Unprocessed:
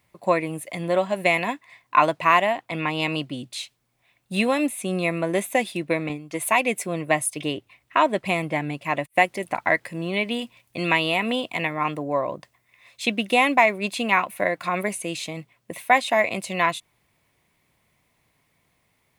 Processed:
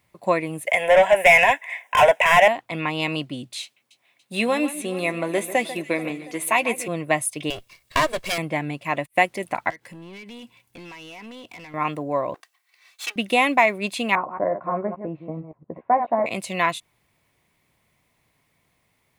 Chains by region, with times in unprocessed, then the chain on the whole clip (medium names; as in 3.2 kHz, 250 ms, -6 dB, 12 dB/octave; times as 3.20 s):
0.67–2.48 s: high-pass 280 Hz 24 dB/octave + overdrive pedal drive 25 dB, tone 4.7 kHz, clips at -3.5 dBFS + static phaser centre 1.2 kHz, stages 6
3.62–6.88 s: high-pass 220 Hz + doubling 13 ms -12.5 dB + echo whose repeats swap between lows and highs 143 ms, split 2.2 kHz, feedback 73%, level -13 dB
7.50–8.38 s: comb filter that takes the minimum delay 1.8 ms + treble shelf 3 kHz +10.5 dB
9.70–11.74 s: comb of notches 620 Hz + compression, threshold -35 dBFS + hard clipper -36.5 dBFS
12.34–13.16 s: comb filter that takes the minimum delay 2.6 ms + high-pass 1 kHz
14.15–16.26 s: chunks repeated in reverse 114 ms, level -8.5 dB + low-pass 1.1 kHz 24 dB/octave + doubling 13 ms -8 dB
whole clip: none